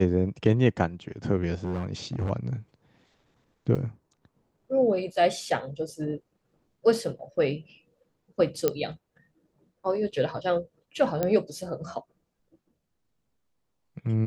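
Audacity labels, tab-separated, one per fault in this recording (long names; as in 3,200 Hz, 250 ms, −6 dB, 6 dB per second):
1.640000	2.300000	clipping −25 dBFS
3.750000	3.750000	drop-out 4.9 ms
8.680000	8.680000	click −10 dBFS
11.230000	11.230000	click −13 dBFS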